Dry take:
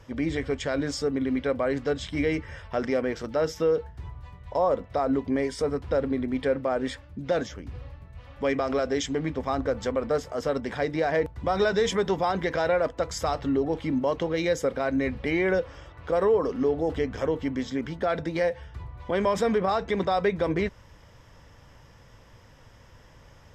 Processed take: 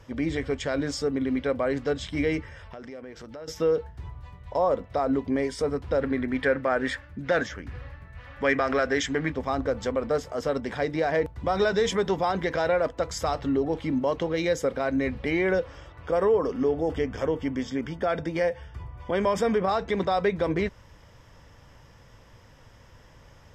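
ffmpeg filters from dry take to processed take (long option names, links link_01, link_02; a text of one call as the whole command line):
ffmpeg -i in.wav -filter_complex "[0:a]asettb=1/sr,asplit=3[link_01][link_02][link_03];[link_01]atrim=end=2.464[link_04];[link_02]atrim=start=2.46:end=3.48,asetpts=PTS-STARTPTS,afade=type=in:duration=0.004:curve=qsin,afade=type=out:start_time=1.016:duration=0.004:curve=qsin,acompressor=threshold=-40dB:ratio=4:attack=3.2:release=140:knee=1:detection=peak[link_05];[link_03]atrim=start=3.476[link_06];[link_04][link_05]acrossfade=duration=0.004:curve1=hsin:curve2=qsin[link_07];[link_07][link_06]acrossfade=duration=0.004:curve1=qsin:curve2=hsin,asettb=1/sr,asplit=3[link_08][link_09][link_10];[link_08]atrim=end=6.014[link_11];[link_09]atrim=start=6.01:end=9.32,asetpts=PTS-STARTPTS,afade=type=in:duration=0.004:curve=qsin,afade=type=out:start_time=3.306:duration=0.004:curve=qsin,equalizer=frequency=1700:width_type=o:width=0.89:gain=11[link_12];[link_10]atrim=start=9.316[link_13];[link_11][link_12]acrossfade=duration=0.004:curve1=hsin:curve2=qsin[link_14];[link_14][link_13]acrossfade=duration=0.004:curve1=qsin:curve2=hsin,asettb=1/sr,asplit=3[link_15][link_16][link_17];[link_15]atrim=end=16.024[link_18];[link_16]atrim=start=16.02:end=19.64,asetpts=PTS-STARTPTS,afade=type=in:duration=0.004:curve=qsin,afade=type=out:start_time=3.616:duration=0.004:curve=qsin,asuperstop=centerf=4000:order=8:qfactor=7.6[link_19];[link_17]atrim=start=19.636[link_20];[link_18][link_19]acrossfade=duration=0.004:curve1=hsin:curve2=qsin[link_21];[link_21][link_20]acrossfade=duration=0.004:curve1=qsin:curve2=hsin" out.wav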